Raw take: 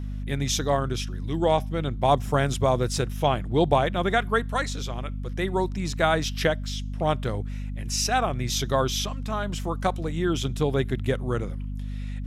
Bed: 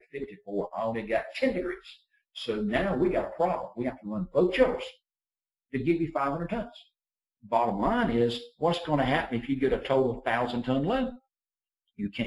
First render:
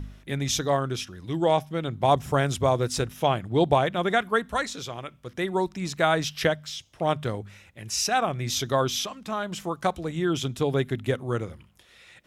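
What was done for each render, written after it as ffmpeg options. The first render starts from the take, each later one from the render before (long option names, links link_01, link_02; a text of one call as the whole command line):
ffmpeg -i in.wav -af "bandreject=frequency=50:width_type=h:width=4,bandreject=frequency=100:width_type=h:width=4,bandreject=frequency=150:width_type=h:width=4,bandreject=frequency=200:width_type=h:width=4,bandreject=frequency=250:width_type=h:width=4" out.wav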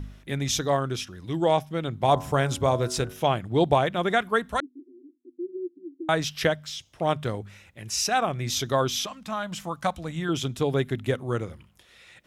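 ffmpeg -i in.wav -filter_complex "[0:a]asettb=1/sr,asplit=3[link_01][link_02][link_03];[link_01]atrim=end=1.974[link_04];[link_02]atrim=start=1.97:end=3.27,asetpts=PTS-STARTPTS,afade=type=in:duration=0.004:curve=qsin,afade=type=out:start_time=1.296:duration=0.004:curve=qsin,bandreject=frequency=92.71:width_type=h:width=4,bandreject=frequency=185.42:width_type=h:width=4,bandreject=frequency=278.13:width_type=h:width=4,bandreject=frequency=370.84:width_type=h:width=4,bandreject=frequency=463.55:width_type=h:width=4,bandreject=frequency=556.26:width_type=h:width=4,bandreject=frequency=648.97:width_type=h:width=4,bandreject=frequency=741.68:width_type=h:width=4,bandreject=frequency=834.39:width_type=h:width=4,bandreject=frequency=927.1:width_type=h:width=4,bandreject=frequency=1019.81:width_type=h:width=4,bandreject=frequency=1112.52:width_type=h:width=4,bandreject=frequency=1205.23:width_type=h:width=4,bandreject=frequency=1297.94:width_type=h:width=4,bandreject=frequency=1390.65:width_type=h:width=4,bandreject=frequency=1483.36:width_type=h:width=4,bandreject=frequency=1576.07:width_type=h:width=4[link_05];[link_03]atrim=start=3.266[link_06];[link_04][link_05]acrossfade=duration=0.004:curve1=hsin:curve2=qsin[link_07];[link_07][link_06]acrossfade=duration=0.004:curve1=qsin:curve2=hsin,asettb=1/sr,asplit=3[link_08][link_09][link_10];[link_08]atrim=end=4.604[link_11];[link_09]atrim=start=4.6:end=6.09,asetpts=PTS-STARTPTS,afade=type=in:duration=0.004:curve=qsin,afade=type=out:start_time=1.486:duration=0.004:curve=qsin,asuperpass=centerf=310:order=8:qfactor=3.1[link_12];[link_10]atrim=start=6.086[link_13];[link_11][link_12]acrossfade=duration=0.004:curve1=hsin:curve2=qsin[link_14];[link_14][link_13]acrossfade=duration=0.004:curve1=qsin:curve2=hsin,asettb=1/sr,asplit=3[link_15][link_16][link_17];[link_15]atrim=end=9.064[link_18];[link_16]atrim=start=9.06:end=10.29,asetpts=PTS-STARTPTS,afade=type=in:duration=0.004:curve=qsin,afade=type=out:start_time=1.226:duration=0.004:curve=qsin,equalizer=frequency=390:width_type=o:width=0.42:gain=-13.5[link_19];[link_17]atrim=start=10.286[link_20];[link_18][link_19]acrossfade=duration=0.004:curve1=hsin:curve2=qsin[link_21];[link_21][link_20]acrossfade=duration=0.004:curve1=qsin:curve2=hsin" out.wav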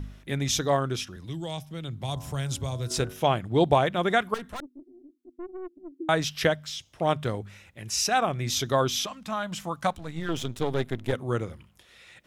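ffmpeg -i in.wav -filter_complex "[0:a]asettb=1/sr,asplit=3[link_01][link_02][link_03];[link_01]atrim=end=1.164[link_04];[link_02]atrim=start=1.16:end=2.91,asetpts=PTS-STARTPTS,afade=type=in:duration=0.004:curve=qsin,afade=type=out:start_time=1.746:duration=0.004:curve=qsin,acrossover=split=160|3000[link_05][link_06][link_07];[link_06]acompressor=threshold=-47dB:ratio=2:attack=3.2:release=140:knee=2.83:detection=peak[link_08];[link_05][link_08][link_07]amix=inputs=3:normalize=0[link_09];[link_03]atrim=start=2.906[link_10];[link_04][link_09]acrossfade=duration=0.004:curve1=hsin:curve2=qsin[link_11];[link_11][link_10]acrossfade=duration=0.004:curve1=qsin:curve2=hsin,asettb=1/sr,asplit=3[link_12][link_13][link_14];[link_12]atrim=end=4.344[link_15];[link_13]atrim=start=4.34:end=5.92,asetpts=PTS-STARTPTS,afade=type=in:duration=0.004:curve=qsin,afade=type=out:start_time=1.576:duration=0.004:curve=qsin,aeval=exprs='(tanh(50.1*val(0)+0.4)-tanh(0.4))/50.1':channel_layout=same[link_16];[link_14]atrim=start=5.916[link_17];[link_15][link_16]acrossfade=duration=0.004:curve1=hsin:curve2=qsin[link_18];[link_18][link_17]acrossfade=duration=0.004:curve1=qsin:curve2=hsin,asettb=1/sr,asplit=3[link_19][link_20][link_21];[link_19]atrim=end=9.924[link_22];[link_20]atrim=start=9.92:end=11.13,asetpts=PTS-STARTPTS,afade=type=in:duration=0.004:curve=qsin,afade=type=out:start_time=1.206:duration=0.004:curve=qsin,aeval=exprs='if(lt(val(0),0),0.251*val(0),val(0))':channel_layout=same[link_23];[link_21]atrim=start=11.126[link_24];[link_22][link_23]acrossfade=duration=0.004:curve1=hsin:curve2=qsin[link_25];[link_25][link_24]acrossfade=duration=0.004:curve1=qsin:curve2=hsin" out.wav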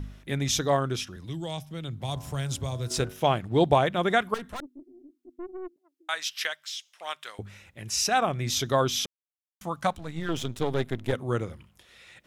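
ffmpeg -i in.wav -filter_complex "[0:a]asettb=1/sr,asplit=3[link_01][link_02][link_03];[link_01]atrim=end=2.004[link_04];[link_02]atrim=start=2:end=3.66,asetpts=PTS-STARTPTS,afade=type=in:duration=0.004:curve=qsin,afade=type=out:start_time=1.656:duration=0.004:curve=qsin,aeval=exprs='sgn(val(0))*max(abs(val(0))-0.00188,0)':channel_layout=same[link_05];[link_03]atrim=start=3.656[link_06];[link_04][link_05]acrossfade=duration=0.004:curve1=hsin:curve2=qsin[link_07];[link_07][link_06]acrossfade=duration=0.004:curve1=qsin:curve2=hsin,asettb=1/sr,asplit=3[link_08][link_09][link_10];[link_08]atrim=end=5.764[link_11];[link_09]atrim=start=5.76:end=7.39,asetpts=PTS-STARTPTS,afade=type=in:duration=0.004:curve=qsin,afade=type=out:start_time=1.626:duration=0.004:curve=qsin,highpass=1500[link_12];[link_10]atrim=start=7.386[link_13];[link_11][link_12]acrossfade=duration=0.004:curve1=hsin:curve2=qsin[link_14];[link_14][link_13]acrossfade=duration=0.004:curve1=qsin:curve2=hsin,asplit=3[link_15][link_16][link_17];[link_15]atrim=end=9.06,asetpts=PTS-STARTPTS,afade=type=out:start_time=9.056:duration=0.004:curve=hsin[link_18];[link_16]atrim=start=9.06:end=9.61,asetpts=PTS-STARTPTS,volume=0[link_19];[link_17]atrim=start=9.61,asetpts=PTS-STARTPTS,afade=type=in:duration=0.004:curve=hsin[link_20];[link_18][link_19][link_20]concat=n=3:v=0:a=1" out.wav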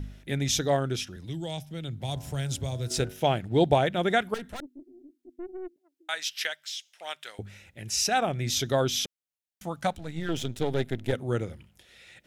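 ffmpeg -i in.wav -af "equalizer=frequency=1100:width_type=o:width=0.38:gain=-10.5" out.wav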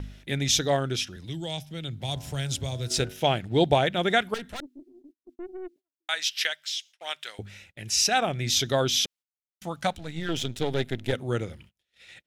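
ffmpeg -i in.wav -af "agate=range=-29dB:threshold=-52dB:ratio=16:detection=peak,equalizer=frequency=3600:width_type=o:width=2.1:gain=5.5" out.wav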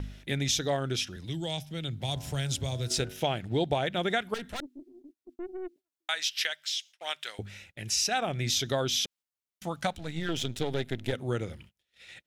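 ffmpeg -i in.wav -af "acompressor=threshold=-27dB:ratio=2.5" out.wav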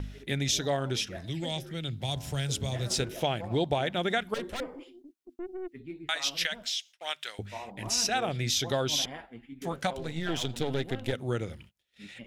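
ffmpeg -i in.wav -i bed.wav -filter_complex "[1:a]volume=-16.5dB[link_01];[0:a][link_01]amix=inputs=2:normalize=0" out.wav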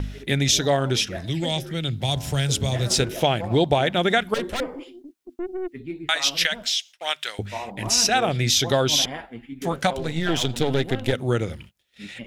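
ffmpeg -i in.wav -af "volume=8.5dB" out.wav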